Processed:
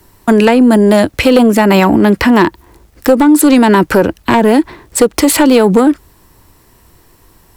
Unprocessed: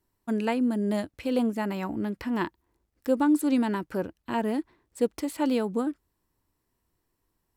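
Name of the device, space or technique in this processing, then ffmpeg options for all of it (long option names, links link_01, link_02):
mastering chain: -filter_complex "[0:a]equalizer=frequency=260:width_type=o:width=0.77:gain=-3,acrossover=split=230|520[link_01][link_02][link_03];[link_01]acompressor=threshold=-42dB:ratio=4[link_04];[link_02]acompressor=threshold=-27dB:ratio=4[link_05];[link_03]acompressor=threshold=-32dB:ratio=4[link_06];[link_04][link_05][link_06]amix=inputs=3:normalize=0,acompressor=threshold=-30dB:ratio=2.5,asoftclip=type=tanh:threshold=-24dB,asoftclip=type=hard:threshold=-28dB,alimiter=level_in=32dB:limit=-1dB:release=50:level=0:latency=1,volume=-1dB"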